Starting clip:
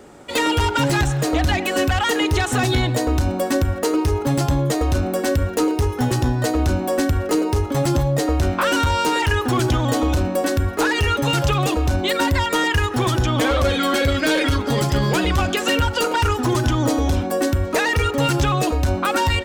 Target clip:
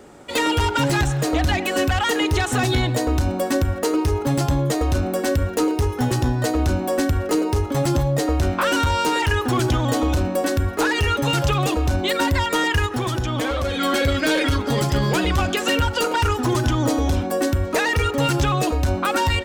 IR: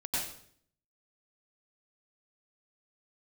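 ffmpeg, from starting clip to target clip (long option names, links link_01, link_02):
-filter_complex "[0:a]asplit=3[link_01][link_02][link_03];[link_01]afade=type=out:start_time=12.86:duration=0.02[link_04];[link_02]acompressor=threshold=-19dB:ratio=6,afade=type=in:start_time=12.86:duration=0.02,afade=type=out:start_time=13.8:duration=0.02[link_05];[link_03]afade=type=in:start_time=13.8:duration=0.02[link_06];[link_04][link_05][link_06]amix=inputs=3:normalize=0,volume=-1dB"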